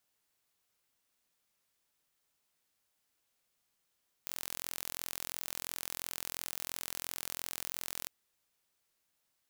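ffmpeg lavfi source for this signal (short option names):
-f lavfi -i "aevalsrc='0.266*eq(mod(n,1028),0)':d=3.8:s=44100"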